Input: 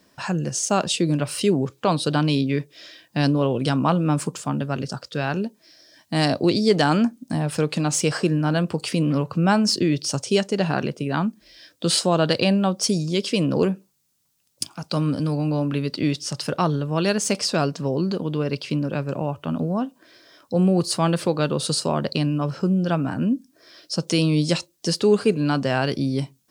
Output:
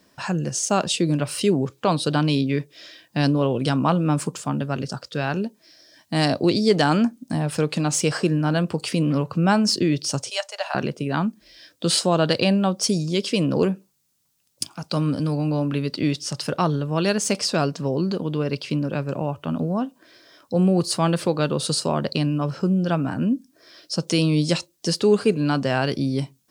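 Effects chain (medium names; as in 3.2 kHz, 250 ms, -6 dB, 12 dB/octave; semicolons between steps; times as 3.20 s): 10.30–10.75 s: Chebyshev high-pass 600 Hz, order 5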